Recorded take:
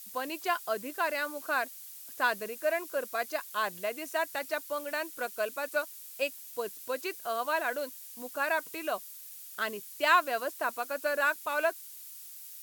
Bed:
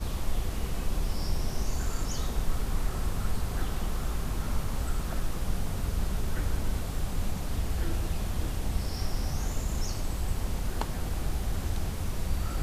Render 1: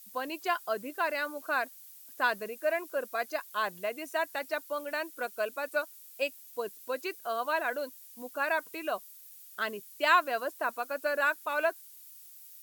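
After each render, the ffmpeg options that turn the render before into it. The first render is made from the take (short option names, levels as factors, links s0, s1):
-af "afftdn=nr=7:nf=-47"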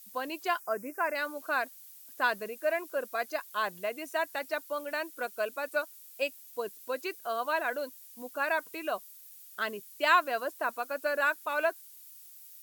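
-filter_complex "[0:a]asplit=3[s0][s1][s2];[s0]afade=t=out:st=0.59:d=0.02[s3];[s1]asuperstop=centerf=3600:order=8:qfactor=1.4,afade=t=in:st=0.59:d=0.02,afade=t=out:st=1.14:d=0.02[s4];[s2]afade=t=in:st=1.14:d=0.02[s5];[s3][s4][s5]amix=inputs=3:normalize=0"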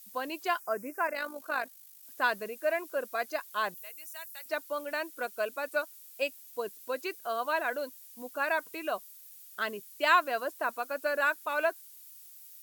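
-filter_complex "[0:a]asettb=1/sr,asplit=3[s0][s1][s2];[s0]atrim=end=1.074[s3];[s1]atrim=start=1.07:end=2.03,asetpts=PTS-STARTPTS,afade=t=in:d=0.004:c=qsin,afade=t=out:st=0.956:d=0.004:c=qsin,tremolo=f=51:d=0.571[s4];[s2]atrim=start=2.026[s5];[s3][s4]acrossfade=d=0.004:c1=hsin:c2=qsin[s6];[s6][s5]acrossfade=d=0.004:c1=qsin:c2=hsin,asettb=1/sr,asplit=3[s7][s8][s9];[s7]atrim=end=3.744[s10];[s8]atrim=start=3.74:end=4.46,asetpts=PTS-STARTPTS,afade=t=in:d=0.004:c=qsin,afade=t=out:st=0.716:d=0.004:c=qsin,aderivative[s11];[s9]atrim=start=4.456[s12];[s10][s11]acrossfade=d=0.004:c1=hsin:c2=qsin[s13];[s13][s12]acrossfade=d=0.004:c1=qsin:c2=hsin"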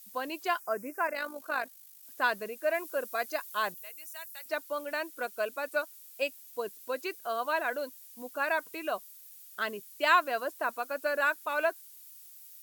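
-filter_complex "[0:a]asettb=1/sr,asplit=3[s0][s1][s2];[s0]atrim=end=2.744[s3];[s1]atrim=start=2.74:end=3.73,asetpts=PTS-STARTPTS,afade=t=in:d=0.004:c=qsin,afade=t=out:st=0.986:d=0.004:c=qsin,highshelf=f=5500:g=5[s4];[s2]atrim=start=3.726[s5];[s3][s4]acrossfade=d=0.004:c1=hsin:c2=qsin[s6];[s6][s5]acrossfade=d=0.004:c1=qsin:c2=hsin"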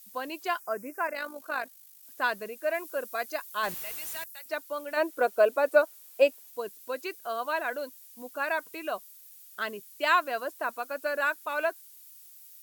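-filter_complex "[0:a]asettb=1/sr,asplit=3[s0][s1][s2];[s0]atrim=end=3.634[s3];[s1]atrim=start=3.63:end=4.24,asetpts=PTS-STARTPTS,afade=t=in:d=0.004:c=qsin,afade=t=out:st=0.606:d=0.004:c=qsin,aeval=exprs='val(0)+0.5*0.0178*sgn(val(0))':c=same[s4];[s2]atrim=start=4.236[s5];[s3][s4]acrossfade=d=0.004:c1=hsin:c2=qsin[s6];[s6][s5]acrossfade=d=0.004:c1=qsin:c2=hsin,asplit=3[s7][s8][s9];[s7]afade=t=out:st=4.96:d=0.02[s10];[s8]equalizer=f=520:w=0.49:g=12,afade=t=in:st=4.96:d=0.02,afade=t=out:st=6.49:d=0.02[s11];[s9]afade=t=in:st=6.49:d=0.02[s12];[s10][s11][s12]amix=inputs=3:normalize=0"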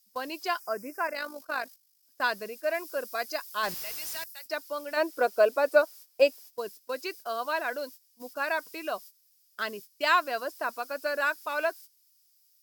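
-af "equalizer=f=5100:t=o:w=0.35:g=12.5,agate=range=0.178:threshold=0.00562:ratio=16:detection=peak"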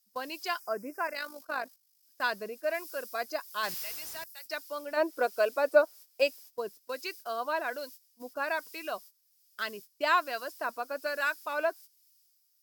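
-filter_complex "[0:a]acrossover=split=1400[s0][s1];[s0]aeval=exprs='val(0)*(1-0.5/2+0.5/2*cos(2*PI*1.2*n/s))':c=same[s2];[s1]aeval=exprs='val(0)*(1-0.5/2-0.5/2*cos(2*PI*1.2*n/s))':c=same[s3];[s2][s3]amix=inputs=2:normalize=0"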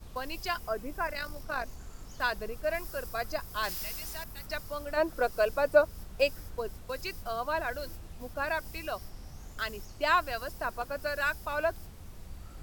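-filter_complex "[1:a]volume=0.168[s0];[0:a][s0]amix=inputs=2:normalize=0"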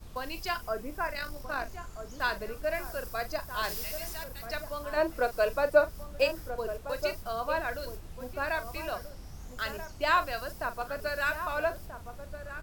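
-filter_complex "[0:a]asplit=2[s0][s1];[s1]adelay=40,volume=0.251[s2];[s0][s2]amix=inputs=2:normalize=0,asplit=2[s3][s4];[s4]adelay=1283,volume=0.355,highshelf=f=4000:g=-28.9[s5];[s3][s5]amix=inputs=2:normalize=0"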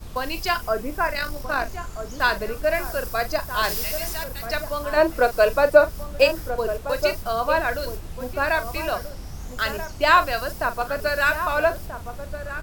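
-af "volume=2.99,alimiter=limit=0.794:level=0:latency=1"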